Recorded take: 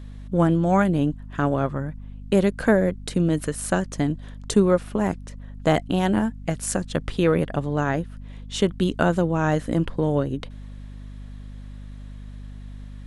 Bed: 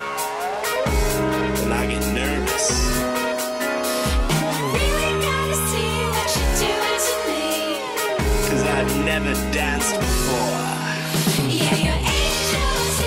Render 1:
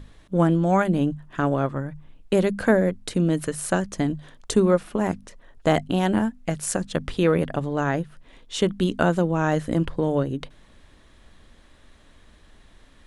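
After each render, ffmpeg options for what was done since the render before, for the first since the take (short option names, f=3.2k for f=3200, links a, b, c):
-af "bandreject=f=50:t=h:w=6,bandreject=f=100:t=h:w=6,bandreject=f=150:t=h:w=6,bandreject=f=200:t=h:w=6,bandreject=f=250:t=h:w=6"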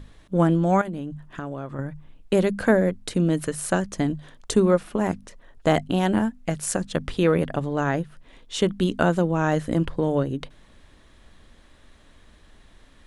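-filter_complex "[0:a]asettb=1/sr,asplit=3[a][b][c];[a]atrim=end=0.814[d];[b]atrim=start=0.81:end=1.79,asetpts=PTS-STARTPTS,afade=t=in:d=0.004:c=qsin,afade=t=out:st=0.976:d=0.004:c=qsin,acompressor=threshold=-28dB:ratio=6:attack=3.2:release=140:knee=1:detection=peak[e];[c]atrim=start=1.786[f];[d][e]acrossfade=d=0.004:c1=hsin:c2=qsin[g];[g][f]acrossfade=d=0.004:c1=qsin:c2=hsin"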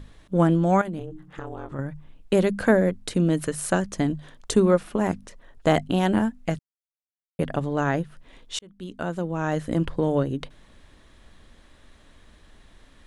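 -filter_complex "[0:a]asettb=1/sr,asplit=3[a][b][c];[a]atrim=end=0.994[d];[b]atrim=start=0.99:end=1.72,asetpts=PTS-STARTPTS,afade=t=in:d=0.004:c=qsin,afade=t=out:st=0.726:d=0.004:c=qsin,aeval=exprs='val(0)*sin(2*PI*160*n/s)':c=same[e];[c]atrim=start=1.716[f];[d][e]acrossfade=d=0.004:c1=hsin:c2=qsin[g];[g][f]acrossfade=d=0.004:c1=qsin:c2=hsin,asplit=4[h][i][j][k];[h]atrim=end=6.59,asetpts=PTS-STARTPTS,afade=t=out:st=6.586:d=0.004:c=hsin[l];[i]atrim=start=6.59:end=7.39,asetpts=PTS-STARTPTS,volume=0[m];[j]atrim=start=7.39:end=8.59,asetpts=PTS-STARTPTS,afade=t=in:d=0.004:c=hsin,afade=t=out:st=1.196:d=0.004:c=hsin[n];[k]atrim=start=8.59,asetpts=PTS-STARTPTS,afade=t=in:d=1.37[o];[l][m][n][o]concat=n=4:v=0:a=1"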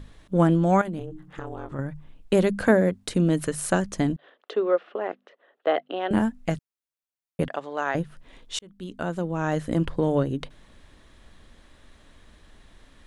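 -filter_complex "[0:a]asettb=1/sr,asplit=3[a][b][c];[a]atrim=end=2.684[d];[b]atrim=start=2.68:end=3.09,asetpts=PTS-STARTPTS,afade=t=in:d=0.004:c=qsin,afade=t=out:st=0.406:d=0.004:c=qsin,highpass=69[e];[c]atrim=start=3.086[f];[d][e]acrossfade=d=0.004:c1=hsin:c2=qsin[g];[g][f]acrossfade=d=0.004:c1=qsin:c2=hsin,asettb=1/sr,asplit=3[h][i][j];[h]atrim=end=4.164[k];[i]atrim=start=4.16:end=6.11,asetpts=PTS-STARTPTS,afade=t=in:d=0.004:c=qsin,afade=t=out:st=1.946:d=0.004:c=qsin,highpass=f=400:w=0.5412,highpass=f=400:w=1.3066,equalizer=f=950:t=q:w=4:g=-8,equalizer=f=1.6k:t=q:w=4:g=-3,equalizer=f=2.3k:t=q:w=4:g=-7,lowpass=f=3k:w=0.5412,lowpass=f=3k:w=1.3066[l];[j]atrim=start=6.106[m];[k][l]acrossfade=d=0.004:c1=hsin:c2=qsin[n];[n][m]acrossfade=d=0.004:c1=qsin:c2=hsin,asettb=1/sr,asplit=3[o][p][q];[o]atrim=end=7.484[r];[p]atrim=start=7.48:end=7.95,asetpts=PTS-STARTPTS,afade=t=in:d=0.004:c=qsin,afade=t=out:st=0.466:d=0.004:c=qsin,highpass=560,lowpass=5.8k[s];[q]atrim=start=7.946[t];[r][s]acrossfade=d=0.004:c1=hsin:c2=qsin[u];[u][t]acrossfade=d=0.004:c1=qsin:c2=hsin"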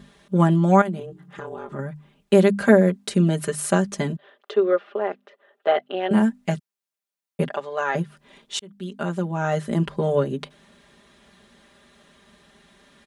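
-af "highpass=120,aecho=1:1:5:0.94"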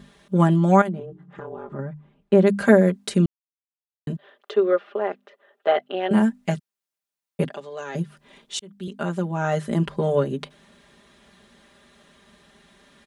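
-filter_complex "[0:a]asplit=3[a][b][c];[a]afade=t=out:st=0.88:d=0.02[d];[b]lowpass=f=1.1k:p=1,afade=t=in:st=0.88:d=0.02,afade=t=out:st=2.46:d=0.02[e];[c]afade=t=in:st=2.46:d=0.02[f];[d][e][f]amix=inputs=3:normalize=0,asettb=1/sr,asplit=3[g][h][i];[g]atrim=end=7.444[j];[h]atrim=start=7.44:end=8.88,asetpts=PTS-STARTPTS,afade=t=in:d=0.004:c=qsin,afade=t=out:st=1.436:d=0.004:c=qsin,acrossover=split=430|3000[k][l][m];[l]acompressor=threshold=-46dB:ratio=2:attack=3.2:release=140:knee=2.83:detection=peak[n];[k][n][m]amix=inputs=3:normalize=0[o];[i]atrim=start=8.876[p];[j][o]acrossfade=d=0.004:c1=hsin:c2=qsin[q];[q][p]acrossfade=d=0.004:c1=qsin:c2=hsin,asplit=3[r][s][t];[r]atrim=end=3.26,asetpts=PTS-STARTPTS,afade=t=out:st=3.256:d=0.004:c=hsin[u];[s]atrim=start=3.26:end=4.07,asetpts=PTS-STARTPTS,volume=0[v];[t]atrim=start=4.07,asetpts=PTS-STARTPTS,afade=t=in:d=0.004:c=hsin[w];[u][v][w]concat=n=3:v=0:a=1"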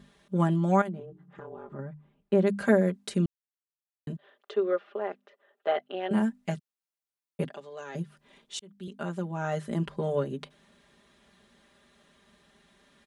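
-af "volume=-7.5dB"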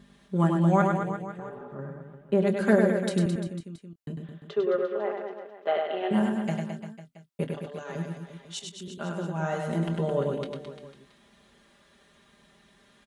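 -filter_complex "[0:a]asplit=2[a][b];[b]adelay=24,volume=-13dB[c];[a][c]amix=inputs=2:normalize=0,aecho=1:1:100|215|347.2|499.3|674.2:0.631|0.398|0.251|0.158|0.1"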